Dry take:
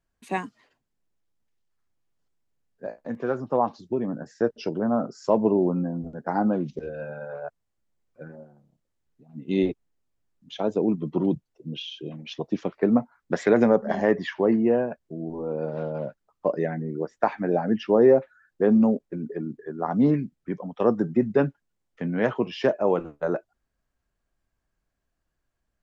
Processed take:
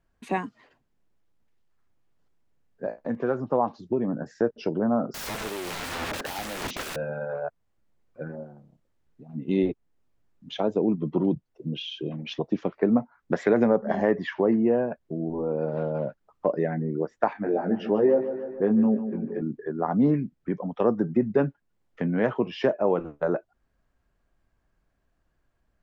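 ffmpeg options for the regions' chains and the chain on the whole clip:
-filter_complex "[0:a]asettb=1/sr,asplit=3[a][b][c];[a]atrim=end=5.144[d];[b]atrim=start=5.14:end=6.96,asetpts=PTS-STARTPTS,afade=t=in:d=0.004:c=qsin,afade=t=out:st=1.816:d=0.004:c=qsin,highpass=f=1.5k:p=1,asplit=2[e][f];[f]highpass=f=720:p=1,volume=40dB,asoftclip=type=tanh:threshold=-16dB[g];[e][g]amix=inputs=2:normalize=0,lowpass=f=2.5k:p=1,volume=-6dB,aeval=exprs='(mod(26.6*val(0)+1,2)-1)/26.6':c=same[h];[c]atrim=start=6.956[i];[d][h]acrossfade=d=0.004:c1=hsin:c2=qsin[j];[j][i]acrossfade=d=0.004:c1=qsin:c2=hsin,asettb=1/sr,asplit=3[k][l][m];[k]atrim=end=17.334[n];[l]atrim=start=17.33:end=19.42,asetpts=PTS-STARTPTS,afade=t=in:d=0.004:c=qsin,afade=t=out:st=2.086:d=0.004:c=qsin,flanger=delay=18.5:depth=3.1:speed=1.3,aecho=1:1:149|298|447|596:0.237|0.107|0.048|0.0216,atrim=end_sample=92169[o];[m]atrim=start=19.416[p];[n][o]acrossfade=d=0.004:c1=hsin:c2=qsin[q];[q][p]acrossfade=d=0.004:c1=qsin:c2=hsin,highshelf=f=4k:g=-11.5,acompressor=threshold=-41dB:ratio=1.5,volume=7.5dB"

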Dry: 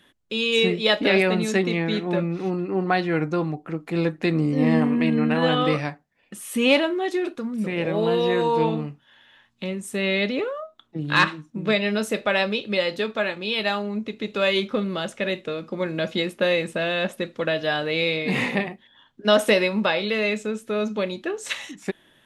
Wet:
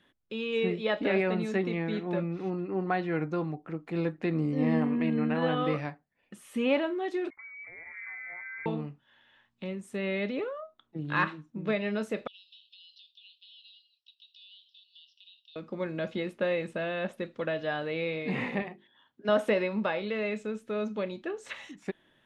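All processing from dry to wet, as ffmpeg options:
-filter_complex "[0:a]asettb=1/sr,asplit=3[a][b][c];[a]atrim=end=7.304[d];[b]atrim=start=7.3:end=8.66,asetpts=PTS-STARTPTS,afade=t=in:d=0.004:c=qsin,afade=t=out:st=1.356:d=0.004:c=qsin,agate=range=-8dB:threshold=-23dB:ratio=16:release=100:detection=peak,acompressor=threshold=-34dB:ratio=3:attack=3.2:release=140:knee=1:detection=peak,lowpass=f=2.1k:t=q:w=0.5098,lowpass=f=2.1k:t=q:w=0.6013,lowpass=f=2.1k:t=q:w=0.9,lowpass=f=2.1k:t=q:w=2.563,afreqshift=-2500[e];[c]atrim=start=8.656[f];[d][e]acrossfade=d=0.004:c1=hsin:c2=qsin[g];[g][f]acrossfade=d=0.004:c1=qsin:c2=hsin,asettb=1/sr,asplit=3[h][i][j];[h]atrim=end=12.274[k];[i]atrim=start=12.27:end=15.56,asetpts=PTS-STARTPTS,afade=t=in:d=0.004:c=qsin,afade=t=out:st=3.286:d=0.004:c=qsin,asuperpass=centerf=4000:order=20:qfactor=1.4,acompressor=threshold=-39dB:ratio=12:attack=3.2:release=140:knee=1:detection=peak[l];[j]atrim=start=15.556[m];[k][l]acrossfade=d=0.004:c1=hsin:c2=qsin[n];[n][m]acrossfade=d=0.004:c1=qsin:c2=hsin,asettb=1/sr,asplit=3[o][p][q];[o]atrim=end=18.624[r];[p]atrim=start=18.62:end=19.29,asetpts=PTS-STARTPTS,afade=t=in:d=0.004:c=qsin,afade=t=out:st=0.666:d=0.004:c=qsin,highpass=f=170:p=1,bandreject=f=50:t=h:w=6,bandreject=f=100:t=h:w=6,bandreject=f=150:t=h:w=6,bandreject=f=200:t=h:w=6,bandreject=f=250:t=h:w=6,bandreject=f=300:t=h:w=6,bandreject=f=350:t=h:w=6,bandreject=f=400:t=h:w=6[s];[q]atrim=start=19.286[t];[r][s]acrossfade=d=0.004:c1=hsin:c2=qsin[u];[u][t]acrossfade=d=0.004:c1=qsin:c2=hsin,aemphasis=mode=reproduction:type=50kf,acrossover=split=2700[v][w];[w]acompressor=threshold=-41dB:ratio=4:attack=1:release=60[x];[v][x]amix=inputs=2:normalize=0,volume=-7dB"

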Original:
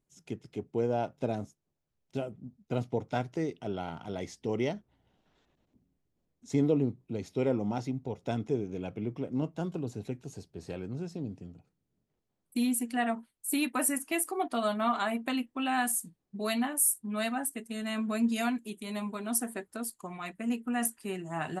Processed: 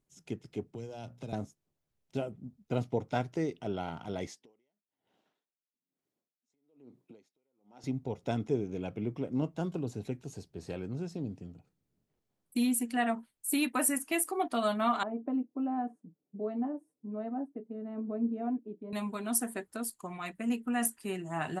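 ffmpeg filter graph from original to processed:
-filter_complex "[0:a]asettb=1/sr,asplit=3[a][b][c];[a]atrim=end=0.664[d];[b]atrim=start=0.66:end=1.33,asetpts=PTS-STARTPTS,afade=t=in:d=0.004:c=qsin,afade=t=out:st=0.666:d=0.004:c=qsin,bandreject=f=60:t=h:w=6,bandreject=f=120:t=h:w=6,bandreject=f=180:t=h:w=6,bandreject=f=240:t=h:w=6,acrossover=split=160|3000[e][f][g];[f]acompressor=threshold=-43dB:ratio=6:attack=3.2:release=140:knee=2.83:detection=peak[h];[e][h][g]amix=inputs=3:normalize=0[i];[c]atrim=start=1.326[j];[d][i]acrossfade=d=0.004:c1=hsin:c2=qsin[k];[k][j]acrossfade=d=0.004:c1=qsin:c2=hsin,asettb=1/sr,asplit=3[l][m][n];[l]atrim=end=4.274[o];[m]atrim=start=4.27:end=7.84,asetpts=PTS-STARTPTS,afade=t=in:d=0.004:c=qsin,afade=t=out:st=3.566:d=0.004:c=qsin,highpass=270,acompressor=threshold=-41dB:ratio=8:attack=3.2:release=140:knee=1:detection=peak,aeval=exprs='val(0)*pow(10,-38*(0.5-0.5*cos(2*PI*1.1*n/s))/20)':c=same[p];[n]atrim=start=7.836[q];[o][p]acrossfade=d=0.004:c1=hsin:c2=qsin[r];[r][q]acrossfade=d=0.004:c1=qsin:c2=hsin,asettb=1/sr,asplit=3[s][t][u];[s]atrim=end=15.034[v];[t]atrim=start=15.03:end=18.93,asetpts=PTS-STARTPTS,afade=t=in:d=0.004:c=qsin,afade=t=out:st=3.896:d=0.004:c=qsin,asuperpass=centerf=350:order=4:qfactor=0.78,aecho=1:1:6.8:0.35,atrim=end_sample=171990[w];[u]atrim=start=18.926[x];[v][w]acrossfade=d=0.004:c1=hsin:c2=qsin[y];[y][x]acrossfade=d=0.004:c1=qsin:c2=hsin"

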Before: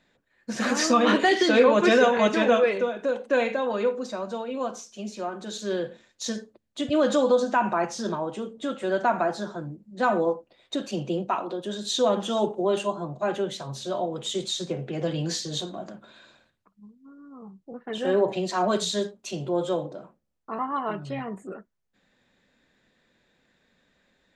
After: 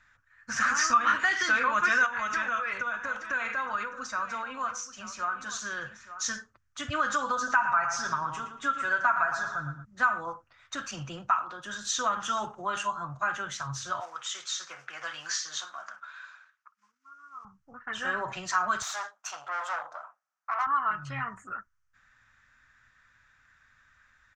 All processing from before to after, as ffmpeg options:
-filter_complex "[0:a]asettb=1/sr,asplit=3[a][b][c];[a]atrim=end=2.064[d];[b]atrim=start=2.06:end=6.26,asetpts=PTS-STARTPTS,afade=t=in:d=0.004:c=qsin,afade=t=out:st=4.196:d=0.004:c=qsin,acompressor=threshold=-25dB:ratio=6:attack=3.2:release=140:knee=1:detection=peak,aecho=1:1:879:0.211,atrim=end_sample=185220[e];[c]atrim=start=6.256[f];[d][e]acrossfade=d=0.004:c1=hsin:c2=qsin[g];[g][f]acrossfade=d=0.004:c1=qsin:c2=hsin,asettb=1/sr,asplit=3[h][i][j];[h]atrim=end=7.364[k];[i]atrim=start=7.36:end=9.85,asetpts=PTS-STARTPTS,afade=t=in:d=0.004:c=qsin,afade=t=out:st=2.486:d=0.004:c=qsin,aecho=1:1:7.3:0.49,atrim=end_sample=109809,asplit=2[l][m];[m]adelay=114,lowpass=f=3.6k:p=1,volume=-8.5dB,asplit=2[n][o];[o]adelay=114,lowpass=f=3.6k:p=1,volume=0.34,asplit=2[p][q];[q]adelay=114,lowpass=f=3.6k:p=1,volume=0.34,asplit=2[r][s];[s]adelay=114,lowpass=f=3.6k:p=1,volume=0.34[t];[l][n][p][r][t]amix=inputs=5:normalize=0,atrim=end_sample=109809[u];[j]atrim=start=9.846[v];[k][u]acrossfade=d=0.004:c1=hsin:c2=qsin[w];[w][v]acrossfade=d=0.004:c1=qsin:c2=hsin,asettb=1/sr,asplit=3[x][y][z];[x]atrim=end=14.004[aa];[y]atrim=start=14:end=17.45,asetpts=PTS-STARTPTS,afade=t=in:d=0.004:c=qsin,afade=t=out:st=3.446:d=0.004:c=qsin,acrusher=bits=7:mode=log:mix=0:aa=0.000001,highpass=690,lowpass=6.8k[ab];[z]atrim=start=17.446[ac];[aa][ab]acrossfade=d=0.004:c1=hsin:c2=qsin[ad];[ad][ac]acrossfade=d=0.004:c1=qsin:c2=hsin,asettb=1/sr,asplit=3[ae][af][ag];[ae]atrim=end=18.824[ah];[af]atrim=start=18.82:end=20.67,asetpts=PTS-STARTPTS,afade=t=in:d=0.004:c=qsin,afade=t=out:st=1.846:d=0.004:c=qsin,aeval=exprs='(tanh(35.5*val(0)+0.6)-tanh(0.6))/35.5':c=same,highpass=f=700:t=q:w=4[ai];[ag]atrim=start=20.666[aj];[ah][ai]acrossfade=d=0.004:c1=hsin:c2=qsin[ak];[ak][aj]acrossfade=d=0.004:c1=qsin:c2=hsin,firequalizer=gain_entry='entry(110,0);entry(180,-20);entry(270,-19);entry(390,-27);entry(1300,8);entry(2000,-2);entry(3900,-13);entry(5900,0);entry(9700,-16)':delay=0.05:min_phase=1,acompressor=threshold=-33dB:ratio=2,volume=6.5dB"

